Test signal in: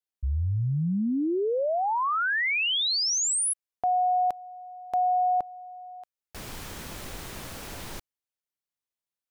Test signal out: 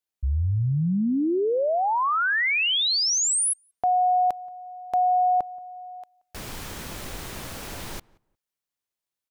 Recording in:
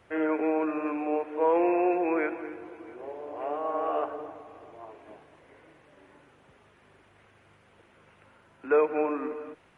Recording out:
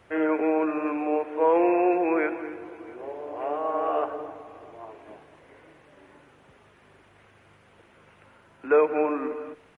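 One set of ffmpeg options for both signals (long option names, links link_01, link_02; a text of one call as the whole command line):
ffmpeg -i in.wav -filter_complex "[0:a]asplit=2[link_01][link_02];[link_02]adelay=178,lowpass=frequency=1600:poles=1,volume=-23.5dB,asplit=2[link_03][link_04];[link_04]adelay=178,lowpass=frequency=1600:poles=1,volume=0.2[link_05];[link_01][link_03][link_05]amix=inputs=3:normalize=0,volume=3dB" out.wav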